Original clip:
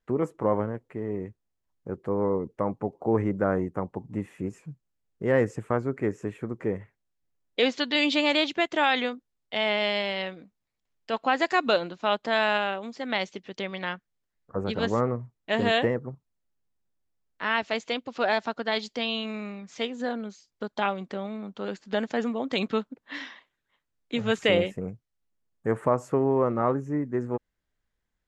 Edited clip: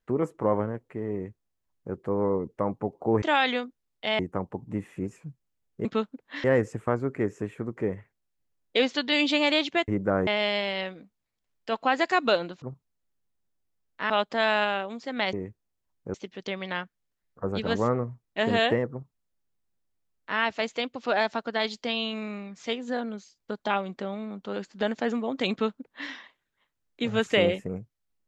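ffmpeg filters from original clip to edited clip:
-filter_complex "[0:a]asplit=11[s0][s1][s2][s3][s4][s5][s6][s7][s8][s9][s10];[s0]atrim=end=3.222[s11];[s1]atrim=start=8.708:end=9.682[s12];[s2]atrim=start=3.608:end=5.272[s13];[s3]atrim=start=22.628:end=23.222[s14];[s4]atrim=start=5.268:end=8.712[s15];[s5]atrim=start=3.218:end=3.612[s16];[s6]atrim=start=9.678:end=12.032[s17];[s7]atrim=start=16.028:end=17.512[s18];[s8]atrim=start=12.028:end=13.262[s19];[s9]atrim=start=1.128:end=1.942[s20];[s10]atrim=start=13.258[s21];[s11][s12]acrossfade=d=0.004:c1=hsin:c2=hsin[s22];[s22][s13]acrossfade=d=0.004:c1=hsin:c2=hsin[s23];[s23][s14]acrossfade=d=0.004:c1=hsin:c2=hsin[s24];[s24][s15]acrossfade=d=0.004:c1=hsin:c2=hsin[s25];[s25][s16]acrossfade=d=0.004:c1=hsin:c2=hsin[s26];[s26][s17]acrossfade=d=0.004:c1=hsin:c2=hsin[s27];[s27][s18]acrossfade=d=0.004:c1=hsin:c2=hsin[s28];[s28][s19]acrossfade=d=0.004:c1=hsin:c2=hsin[s29];[s29][s20]acrossfade=d=0.004:c1=hsin:c2=hsin[s30];[s30][s21]acrossfade=d=0.004:c1=hsin:c2=hsin"

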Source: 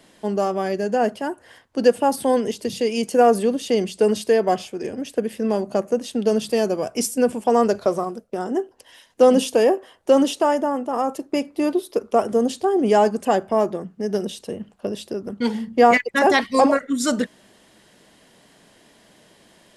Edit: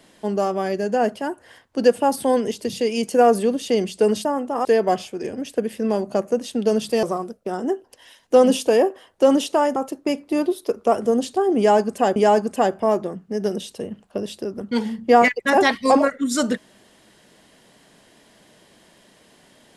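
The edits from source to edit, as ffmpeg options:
-filter_complex "[0:a]asplit=6[s0][s1][s2][s3][s4][s5];[s0]atrim=end=4.252[s6];[s1]atrim=start=10.628:end=11.032[s7];[s2]atrim=start=4.248:end=6.632[s8];[s3]atrim=start=7.898:end=10.632[s9];[s4]atrim=start=11.028:end=13.432[s10];[s5]atrim=start=12.848[s11];[s6][s7]acrossfade=d=0.004:c1=hsin:c2=hsin[s12];[s12][s8]acrossfade=d=0.004:c1=hsin:c2=hsin[s13];[s13][s9]acrossfade=d=0.004:c1=hsin:c2=hsin[s14];[s14][s10]acrossfade=d=0.004:c1=hsin:c2=hsin[s15];[s15][s11]acrossfade=d=0.004:c1=hsin:c2=hsin"

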